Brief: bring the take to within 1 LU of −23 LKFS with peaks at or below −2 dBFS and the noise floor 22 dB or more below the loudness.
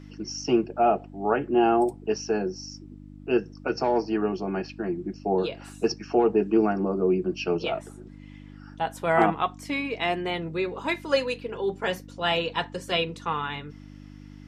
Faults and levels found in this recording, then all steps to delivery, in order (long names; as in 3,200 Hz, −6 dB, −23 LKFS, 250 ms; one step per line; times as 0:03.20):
mains hum 50 Hz; hum harmonics up to 300 Hz; level of the hum −43 dBFS; integrated loudness −26.5 LKFS; sample peak −6.5 dBFS; target loudness −23.0 LKFS
→ hum removal 50 Hz, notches 6
level +3.5 dB